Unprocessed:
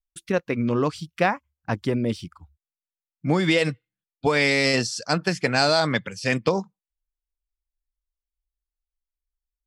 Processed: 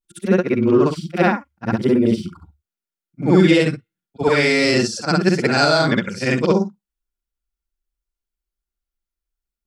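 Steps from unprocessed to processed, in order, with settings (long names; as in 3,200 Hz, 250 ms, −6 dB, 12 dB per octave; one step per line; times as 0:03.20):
every overlapping window played backwards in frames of 139 ms
hollow resonant body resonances 210/350/1,400 Hz, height 11 dB, ringing for 55 ms
level +5.5 dB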